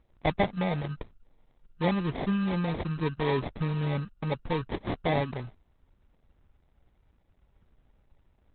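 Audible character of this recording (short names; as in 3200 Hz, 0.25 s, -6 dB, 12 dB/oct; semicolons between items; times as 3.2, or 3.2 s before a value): aliases and images of a low sample rate 1400 Hz, jitter 0%; Opus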